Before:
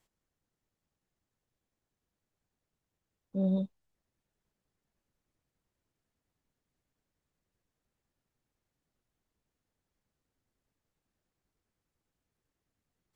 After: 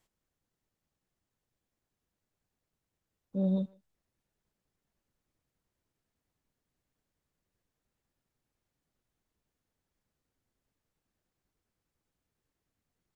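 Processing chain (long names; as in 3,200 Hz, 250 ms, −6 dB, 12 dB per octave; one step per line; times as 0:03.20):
far-end echo of a speakerphone 150 ms, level −24 dB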